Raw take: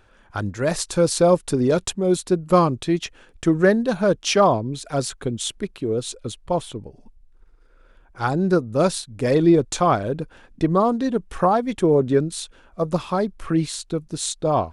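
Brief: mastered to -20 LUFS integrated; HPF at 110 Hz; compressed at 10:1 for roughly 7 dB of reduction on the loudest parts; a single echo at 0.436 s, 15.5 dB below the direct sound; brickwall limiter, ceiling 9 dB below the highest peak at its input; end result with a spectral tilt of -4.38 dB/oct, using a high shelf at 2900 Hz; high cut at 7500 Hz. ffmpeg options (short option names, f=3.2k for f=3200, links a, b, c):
-af "highpass=110,lowpass=7.5k,highshelf=f=2.9k:g=7.5,acompressor=threshold=-17dB:ratio=10,alimiter=limit=-14dB:level=0:latency=1,aecho=1:1:436:0.168,volume=5.5dB"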